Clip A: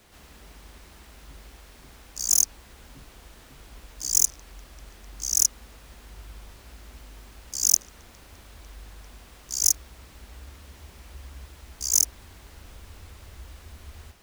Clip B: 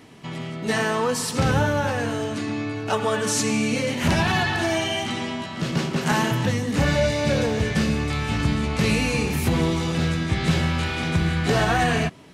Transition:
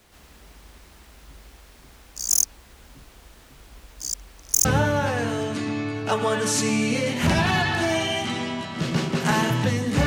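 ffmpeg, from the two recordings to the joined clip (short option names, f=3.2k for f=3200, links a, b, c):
-filter_complex "[0:a]apad=whole_dur=10.06,atrim=end=10.06,asplit=2[a][b];[a]atrim=end=4.142[c];[b]atrim=start=4.138:end=4.652,asetpts=PTS-STARTPTS,areverse[d];[1:a]atrim=start=1.458:end=6.87[e];[c][d]acrossfade=d=0.004:c1=hsin:c2=hsin[f];[f][e]acrossfade=d=0.004:c1=hsin:c2=hsin"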